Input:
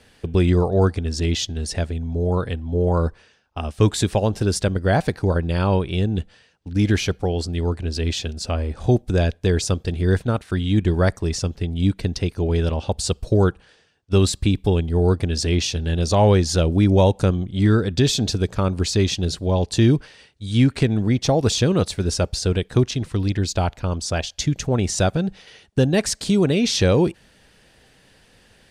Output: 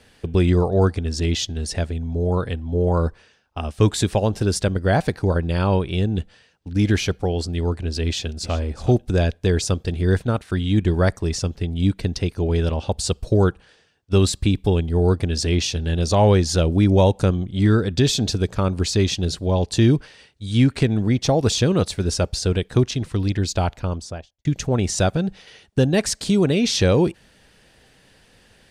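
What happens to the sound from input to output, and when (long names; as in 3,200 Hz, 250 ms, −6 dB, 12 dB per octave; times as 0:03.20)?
0:08.06–0:08.55: delay throw 370 ms, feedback 20%, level −15 dB
0:23.74–0:24.45: fade out and dull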